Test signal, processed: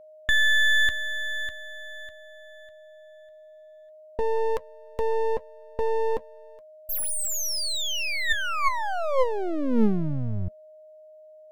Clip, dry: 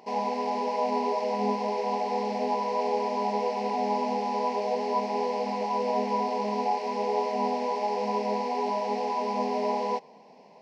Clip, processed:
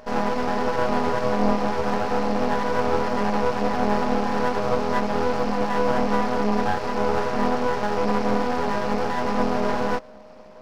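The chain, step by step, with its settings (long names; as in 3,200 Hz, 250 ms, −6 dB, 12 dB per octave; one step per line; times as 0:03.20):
hollow resonant body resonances 220/520/1,100/1,800 Hz, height 11 dB, ringing for 75 ms
half-wave rectification
steady tone 620 Hz −53 dBFS
level +6.5 dB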